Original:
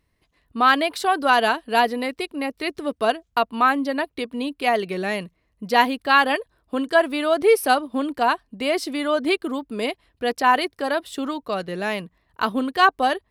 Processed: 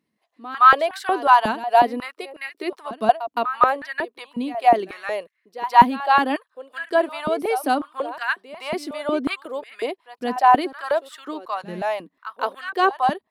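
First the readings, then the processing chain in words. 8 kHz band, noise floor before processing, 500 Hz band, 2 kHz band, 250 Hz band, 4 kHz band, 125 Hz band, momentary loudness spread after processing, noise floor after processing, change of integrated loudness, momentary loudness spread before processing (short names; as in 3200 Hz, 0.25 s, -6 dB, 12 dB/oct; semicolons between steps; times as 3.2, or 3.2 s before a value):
n/a, -70 dBFS, -1.5 dB, -3.0 dB, -3.0 dB, -6.0 dB, 0.0 dB, 16 LU, -75 dBFS, +1.0 dB, 10 LU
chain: dynamic EQ 840 Hz, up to +4 dB, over -31 dBFS, Q 1.4; pre-echo 0.165 s -14 dB; stepped high-pass 5.5 Hz 210–1700 Hz; gain -7 dB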